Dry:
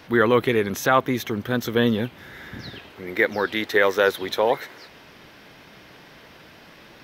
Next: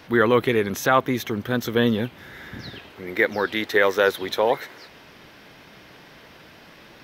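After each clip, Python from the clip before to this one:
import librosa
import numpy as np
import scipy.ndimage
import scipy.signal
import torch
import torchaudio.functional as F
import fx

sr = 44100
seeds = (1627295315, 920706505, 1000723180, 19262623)

y = x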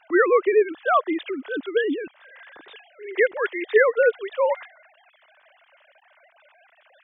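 y = fx.sine_speech(x, sr)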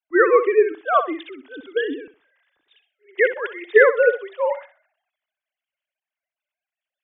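y = fx.room_flutter(x, sr, wall_m=10.9, rt60_s=0.38)
y = fx.band_widen(y, sr, depth_pct=100)
y = y * librosa.db_to_amplitude(-1.0)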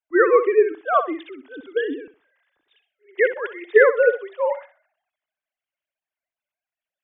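y = fx.high_shelf(x, sr, hz=3000.0, db=-8.5)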